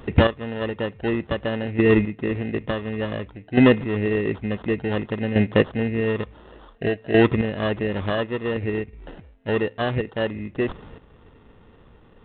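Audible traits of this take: chopped level 0.56 Hz, depth 65%, duty 15%; aliases and images of a low sample rate 2300 Hz, jitter 0%; G.726

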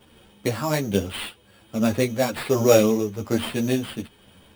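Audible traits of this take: tremolo triangle 1.2 Hz, depth 50%; aliases and images of a low sample rate 6200 Hz, jitter 0%; a shimmering, thickened sound

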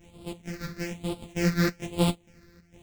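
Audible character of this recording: a buzz of ramps at a fixed pitch in blocks of 256 samples; phasing stages 6, 1.1 Hz, lowest notch 790–1700 Hz; chopped level 2.2 Hz, depth 65%, duty 70%; a shimmering, thickened sound

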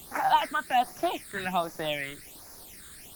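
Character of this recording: a quantiser's noise floor 8-bit, dither triangular; phasing stages 8, 1.3 Hz, lowest notch 760–3100 Hz; Opus

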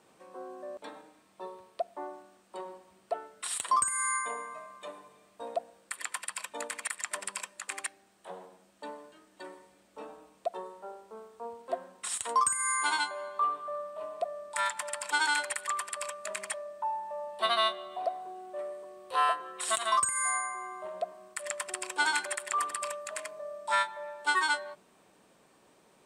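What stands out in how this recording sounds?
noise floor -64 dBFS; spectral tilt +1.0 dB/oct

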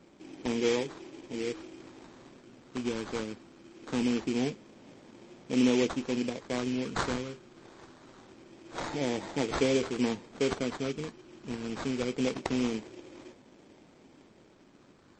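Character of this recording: phasing stages 2, 0.24 Hz, lowest notch 760–1700 Hz; aliases and images of a low sample rate 2800 Hz, jitter 20%; MP3

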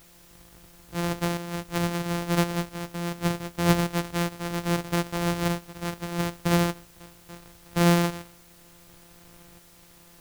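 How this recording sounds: a buzz of ramps at a fixed pitch in blocks of 256 samples; tremolo saw up 0.73 Hz, depth 55%; a quantiser's noise floor 10-bit, dither triangular

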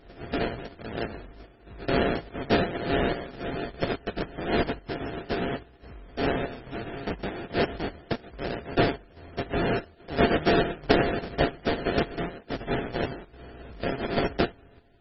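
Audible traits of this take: a buzz of ramps at a fixed pitch in blocks of 64 samples; chopped level 1.2 Hz, depth 60%, duty 75%; aliases and images of a low sample rate 1100 Hz, jitter 20%; MP3

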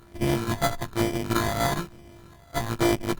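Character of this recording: a buzz of ramps at a fixed pitch in blocks of 128 samples; phasing stages 12, 1.1 Hz, lowest notch 330–1300 Hz; aliases and images of a low sample rate 2700 Hz, jitter 0%; Opus

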